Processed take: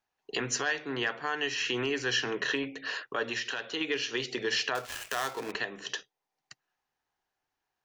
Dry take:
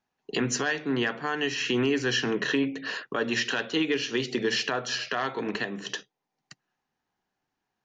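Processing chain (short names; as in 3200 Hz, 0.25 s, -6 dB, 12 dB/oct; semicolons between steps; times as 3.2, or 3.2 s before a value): 4.75–5.52 switching dead time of 0.12 ms; bell 200 Hz -12 dB 1.4 oct; 3.25–3.81 compressor, threshold -29 dBFS, peak gain reduction 6 dB; gain -1.5 dB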